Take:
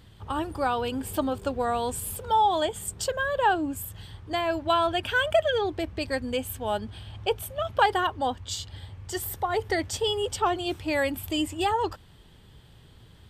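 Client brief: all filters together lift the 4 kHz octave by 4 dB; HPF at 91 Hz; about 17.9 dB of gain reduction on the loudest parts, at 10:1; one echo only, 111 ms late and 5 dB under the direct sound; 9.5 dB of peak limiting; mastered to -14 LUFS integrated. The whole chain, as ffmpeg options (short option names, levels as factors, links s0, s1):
-af "highpass=91,equalizer=f=4000:t=o:g=5.5,acompressor=threshold=0.0178:ratio=10,alimiter=level_in=2:limit=0.0631:level=0:latency=1,volume=0.501,aecho=1:1:111:0.562,volume=17.8"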